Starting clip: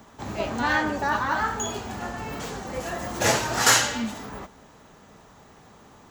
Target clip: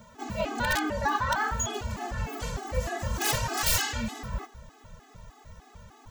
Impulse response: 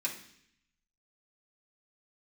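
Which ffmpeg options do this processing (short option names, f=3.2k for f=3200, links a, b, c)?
-af "aeval=exprs='(mod(4.73*val(0)+1,2)-1)/4.73':c=same,asubboost=boost=7.5:cutoff=89,alimiter=limit=-15dB:level=0:latency=1:release=268,afftfilt=real='re*gt(sin(2*PI*3.3*pts/sr)*(1-2*mod(floor(b*sr/1024/220),2)),0)':imag='im*gt(sin(2*PI*3.3*pts/sr)*(1-2*mod(floor(b*sr/1024/220),2)),0)':win_size=1024:overlap=0.75,volume=1.5dB"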